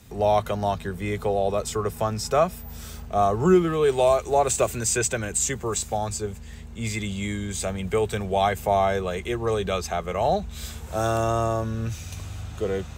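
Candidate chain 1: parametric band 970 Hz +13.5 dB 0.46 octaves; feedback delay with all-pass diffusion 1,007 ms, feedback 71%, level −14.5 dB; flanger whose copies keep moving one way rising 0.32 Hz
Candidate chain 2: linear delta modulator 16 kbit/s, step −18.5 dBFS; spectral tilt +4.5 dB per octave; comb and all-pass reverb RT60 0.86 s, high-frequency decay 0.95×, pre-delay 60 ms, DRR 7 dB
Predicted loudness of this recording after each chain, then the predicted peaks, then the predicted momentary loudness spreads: −26.5, −23.0 LKFS; −8.0, −5.0 dBFS; 12, 5 LU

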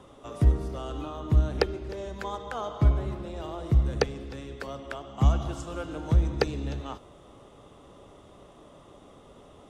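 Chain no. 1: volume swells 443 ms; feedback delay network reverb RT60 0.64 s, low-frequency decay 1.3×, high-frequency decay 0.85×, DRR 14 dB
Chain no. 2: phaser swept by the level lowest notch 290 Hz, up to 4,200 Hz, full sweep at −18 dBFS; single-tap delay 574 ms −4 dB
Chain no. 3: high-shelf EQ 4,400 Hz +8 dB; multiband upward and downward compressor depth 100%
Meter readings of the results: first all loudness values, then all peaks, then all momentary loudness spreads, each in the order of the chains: −39.0, −28.0, −31.5 LKFS; −21.5, −9.0, −13.0 dBFS; 16, 14, 6 LU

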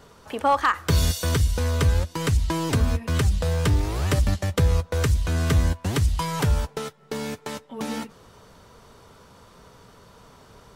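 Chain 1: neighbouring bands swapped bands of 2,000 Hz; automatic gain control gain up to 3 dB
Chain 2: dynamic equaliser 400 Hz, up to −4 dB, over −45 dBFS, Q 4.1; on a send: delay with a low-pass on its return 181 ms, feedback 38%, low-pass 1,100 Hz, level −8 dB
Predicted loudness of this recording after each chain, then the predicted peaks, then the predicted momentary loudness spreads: −16.5, −23.5 LKFS; −6.0, −9.0 dBFS; 12, 12 LU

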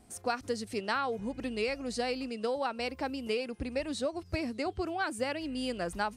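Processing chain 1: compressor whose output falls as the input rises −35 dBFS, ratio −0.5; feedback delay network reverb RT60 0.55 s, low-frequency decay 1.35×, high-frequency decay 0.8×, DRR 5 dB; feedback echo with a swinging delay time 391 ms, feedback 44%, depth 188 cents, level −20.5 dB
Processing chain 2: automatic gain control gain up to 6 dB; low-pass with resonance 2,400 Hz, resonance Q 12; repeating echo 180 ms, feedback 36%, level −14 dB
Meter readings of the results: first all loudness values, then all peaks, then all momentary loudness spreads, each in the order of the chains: −35.0, −21.5 LKFS; −20.0, −6.0 dBFS; 5, 9 LU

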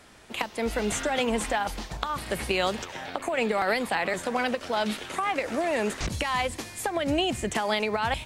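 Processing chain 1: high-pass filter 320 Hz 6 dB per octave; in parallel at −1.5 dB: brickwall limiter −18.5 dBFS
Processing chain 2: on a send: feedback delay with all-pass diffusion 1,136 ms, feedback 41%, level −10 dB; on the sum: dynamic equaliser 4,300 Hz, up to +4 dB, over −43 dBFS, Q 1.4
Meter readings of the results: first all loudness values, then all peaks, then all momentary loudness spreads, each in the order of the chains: −24.5, −27.5 LKFS; −8.5, −9.5 dBFS; 6, 6 LU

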